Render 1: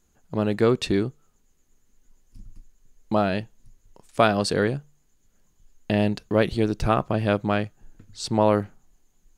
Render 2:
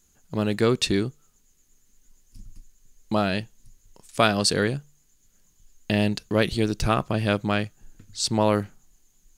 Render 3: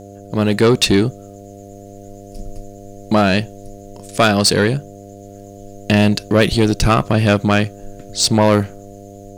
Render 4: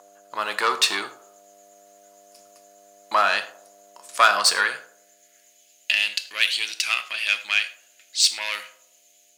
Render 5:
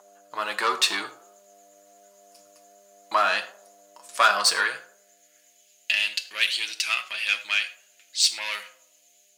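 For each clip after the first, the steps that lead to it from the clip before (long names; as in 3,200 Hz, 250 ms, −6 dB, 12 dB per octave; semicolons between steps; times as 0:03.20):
drawn EQ curve 180 Hz 0 dB, 740 Hz −3 dB, 6,200 Hz +8 dB
automatic gain control gain up to 4 dB; soft clipping −13 dBFS, distortion −14 dB; hum with harmonics 100 Hz, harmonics 7, −45 dBFS −1 dB per octave; level +8 dB
feedback echo with a band-pass in the loop 81 ms, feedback 51%, band-pass 590 Hz, level −12.5 dB; reverb whose tail is shaped and stops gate 140 ms falling, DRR 9.5 dB; high-pass filter sweep 1,100 Hz → 2,500 Hz, 0:04.49–0:05.71; level −4.5 dB
flanger 1.4 Hz, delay 4.9 ms, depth 1.8 ms, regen −29%; level +1.5 dB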